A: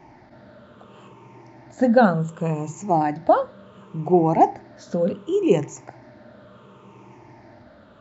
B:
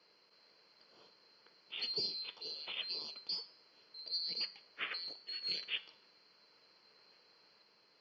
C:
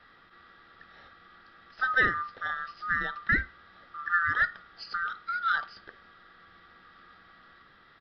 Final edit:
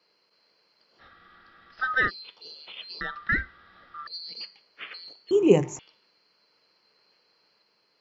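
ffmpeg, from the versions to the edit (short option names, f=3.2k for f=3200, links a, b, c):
-filter_complex "[2:a]asplit=2[a][b];[1:a]asplit=4[c][d][e][f];[c]atrim=end=1.02[g];[a]atrim=start=0.98:end=2.11[h];[d]atrim=start=2.07:end=3.012[i];[b]atrim=start=3.008:end=4.072[j];[e]atrim=start=4.068:end=5.312[k];[0:a]atrim=start=5.308:end=5.792[l];[f]atrim=start=5.788[m];[g][h]acrossfade=d=0.04:c1=tri:c2=tri[n];[n][i]acrossfade=d=0.04:c1=tri:c2=tri[o];[o][j]acrossfade=d=0.004:c1=hsin:c2=hsin[p];[p][k]acrossfade=d=0.004:c1=hsin:c2=hsin[q];[q][l]acrossfade=d=0.004:c1=hsin:c2=hsin[r];[r][m]acrossfade=d=0.004:c1=hsin:c2=hsin"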